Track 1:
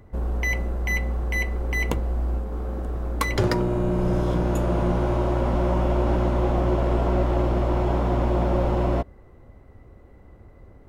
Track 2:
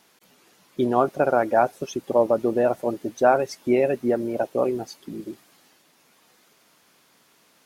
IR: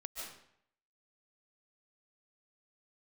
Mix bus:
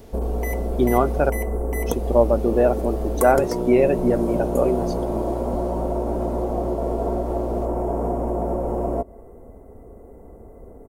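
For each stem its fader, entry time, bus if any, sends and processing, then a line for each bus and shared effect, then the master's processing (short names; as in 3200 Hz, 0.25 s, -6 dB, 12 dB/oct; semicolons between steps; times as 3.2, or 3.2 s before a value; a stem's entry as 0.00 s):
+2.0 dB, 0.00 s, send -23 dB, EQ curve 180 Hz 0 dB, 390 Hz +9 dB, 710 Hz +7 dB, 1500 Hz -7 dB, 3800 Hz -18 dB, 8900 Hz +10 dB; compressor 5:1, threshold -23 dBFS, peak gain reduction 10.5 dB; comb 4.4 ms, depth 37%
-1.0 dB, 0.00 s, muted 1.3–1.86, no send, harmonic-percussive split harmonic +5 dB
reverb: on, RT60 0.70 s, pre-delay 0.105 s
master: dry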